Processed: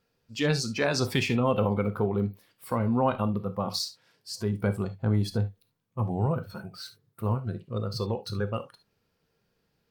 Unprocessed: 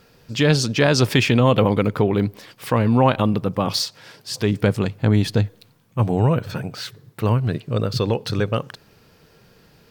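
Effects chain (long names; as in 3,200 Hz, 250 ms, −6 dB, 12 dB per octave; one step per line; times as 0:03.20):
noise reduction from a noise print of the clip's start 13 dB
reverb whose tail is shaped and stops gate 90 ms flat, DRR 9.5 dB
level −8.5 dB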